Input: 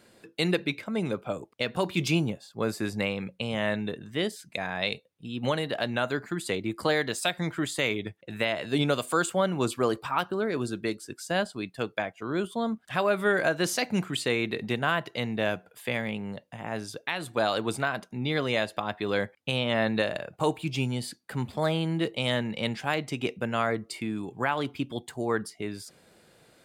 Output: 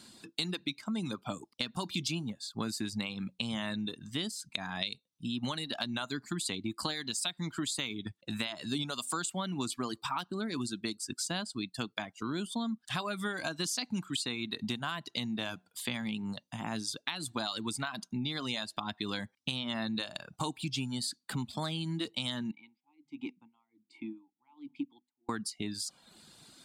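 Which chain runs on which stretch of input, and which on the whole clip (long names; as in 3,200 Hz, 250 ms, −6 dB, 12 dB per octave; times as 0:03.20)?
0:22.51–0:25.29: formant filter u + mains-hum notches 50/100/150/200/250 Hz + tremolo with a sine in dB 1.3 Hz, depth 30 dB
whole clip: reverb reduction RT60 0.67 s; octave-band graphic EQ 250/500/1,000/2,000/4,000/8,000 Hz +8/−12/+5/−5/+10/+8 dB; downward compressor 6 to 1, threshold −32 dBFS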